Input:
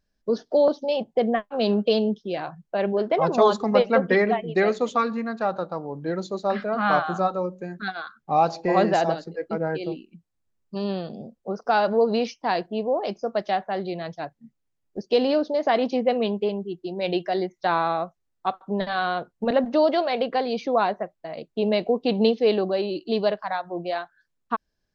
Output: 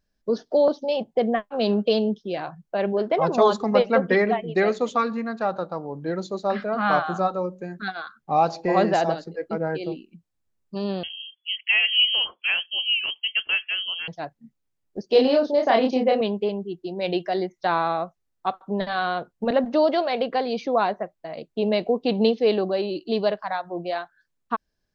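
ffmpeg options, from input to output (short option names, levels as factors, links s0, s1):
-filter_complex "[0:a]asettb=1/sr,asplit=3[s0][s1][s2];[s0]atrim=end=11.034[s3];[s1]atrim=start=11.03:end=14.08,asetpts=PTS-STARTPTS,afade=t=in:d=0.004:c=qsin,afade=t=out:st=3.046:d=0.004:c=qsin,lowpass=f=2900:t=q:w=0.5098,lowpass=f=2900:t=q:w=0.6013,lowpass=f=2900:t=q:w=0.9,lowpass=f=2900:t=q:w=2.563,afreqshift=-3400[s4];[s2]atrim=start=14.076[s5];[s3][s4]acrossfade=d=0.004:c1=hsin:c2=qsin[s6];[s6][s5]acrossfade=d=0.004:c1=qsin:c2=hsin,asettb=1/sr,asplit=3[s7][s8][s9];[s7]atrim=end=15.064[s10];[s8]atrim=start=15.06:end=16.21,asetpts=PTS-STARTPTS,afade=t=in:d=0.004:c=qsin,afade=t=out:st=1.146:d=0.004:c=qsin,asplit=2[s11][s12];[s12]adelay=31,volume=0.794[s13];[s11][s13]amix=inputs=2:normalize=0,atrim=end_sample=50715[s14];[s9]atrim=start=16.206[s15];[s10][s14]acrossfade=d=0.004:c1=hsin:c2=qsin[s16];[s16][s15]acrossfade=d=0.004:c1=qsin:c2=hsin"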